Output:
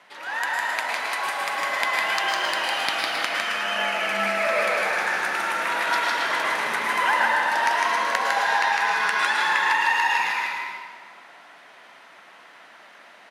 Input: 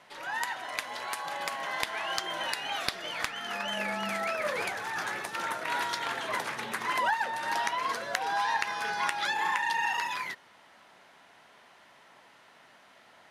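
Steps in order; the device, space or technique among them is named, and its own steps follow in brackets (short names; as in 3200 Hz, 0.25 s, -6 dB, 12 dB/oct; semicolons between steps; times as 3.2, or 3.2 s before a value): stadium PA (HPF 160 Hz 24 dB/oct; bell 1800 Hz +5 dB 1.9 oct; loudspeakers at several distances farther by 53 m -3 dB, 92 m -11 dB; reverb RT60 1.8 s, pre-delay 0.1 s, DRR -1.5 dB)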